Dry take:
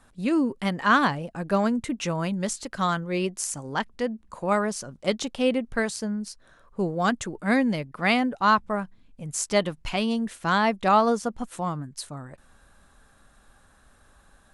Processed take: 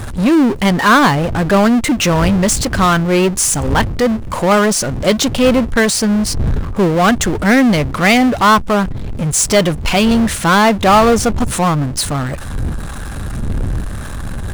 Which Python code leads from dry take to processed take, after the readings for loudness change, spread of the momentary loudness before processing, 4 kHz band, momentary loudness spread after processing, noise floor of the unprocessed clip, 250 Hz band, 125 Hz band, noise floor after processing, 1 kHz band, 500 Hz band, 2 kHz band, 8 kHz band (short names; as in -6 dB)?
+12.5 dB, 11 LU, +14.5 dB, 13 LU, -59 dBFS, +13.5 dB, +17.0 dB, -24 dBFS, +11.0 dB, +12.5 dB, +12.0 dB, +16.5 dB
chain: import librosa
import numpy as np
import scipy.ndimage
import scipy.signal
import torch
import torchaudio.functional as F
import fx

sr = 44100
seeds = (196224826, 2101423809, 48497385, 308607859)

y = fx.dmg_wind(x, sr, seeds[0], corner_hz=95.0, level_db=-41.0)
y = fx.power_curve(y, sr, exponent=0.5)
y = y * librosa.db_to_amplitude(5.5)